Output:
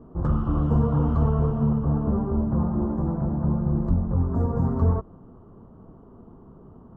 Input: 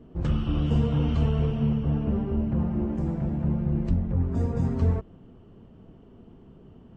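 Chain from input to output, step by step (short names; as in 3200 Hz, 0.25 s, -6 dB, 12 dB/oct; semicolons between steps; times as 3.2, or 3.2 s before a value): resonant high shelf 1700 Hz -13.5 dB, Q 3; gain +2 dB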